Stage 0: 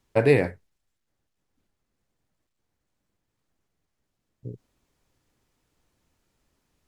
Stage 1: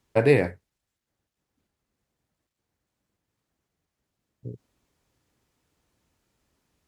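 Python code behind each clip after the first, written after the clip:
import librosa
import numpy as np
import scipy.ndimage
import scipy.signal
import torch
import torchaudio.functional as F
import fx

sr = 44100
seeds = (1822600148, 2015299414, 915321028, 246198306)

y = scipy.signal.sosfilt(scipy.signal.butter(2, 42.0, 'highpass', fs=sr, output='sos'), x)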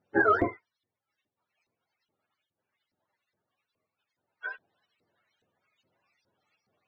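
y = fx.octave_mirror(x, sr, pivot_hz=430.0)
y = fx.filter_lfo_bandpass(y, sr, shape='saw_up', hz=2.4, low_hz=380.0, high_hz=4000.0, q=0.99)
y = fx.high_shelf(y, sr, hz=2000.0, db=9.5)
y = F.gain(torch.from_numpy(y), 6.0).numpy()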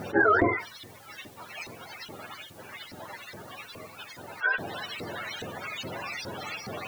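y = fx.env_flatten(x, sr, amount_pct=70)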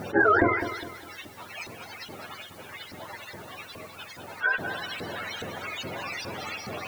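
y = fx.echo_feedback(x, sr, ms=204, feedback_pct=38, wet_db=-10.5)
y = F.gain(torch.from_numpy(y), 1.0).numpy()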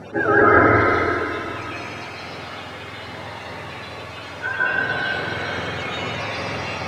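y = fx.air_absorb(x, sr, metres=69.0)
y = fx.rev_plate(y, sr, seeds[0], rt60_s=3.0, hf_ratio=0.75, predelay_ms=115, drr_db=-9.5)
y = F.gain(torch.from_numpy(y), -1.0).numpy()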